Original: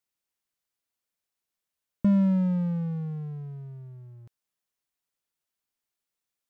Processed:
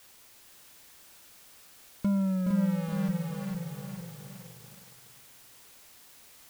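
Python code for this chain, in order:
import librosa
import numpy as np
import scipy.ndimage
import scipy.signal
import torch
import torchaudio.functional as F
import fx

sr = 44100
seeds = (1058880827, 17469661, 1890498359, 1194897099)

p1 = fx.schmitt(x, sr, flips_db=-27.5)
p2 = x + (p1 * 10.0 ** (-5.0 / 20.0))
p3 = fx.low_shelf(p2, sr, hz=410.0, db=-8.5)
p4 = fx.env_lowpass_down(p3, sr, base_hz=1200.0, full_db=-25.5)
p5 = fx.dmg_noise_colour(p4, sr, seeds[0], colour='white', level_db=-56.0)
p6 = p5 + fx.echo_feedback(p5, sr, ms=460, feedback_pct=33, wet_db=-5, dry=0)
y = fx.echo_crushed(p6, sr, ms=419, feedback_pct=55, bits=8, wet_db=-6.5)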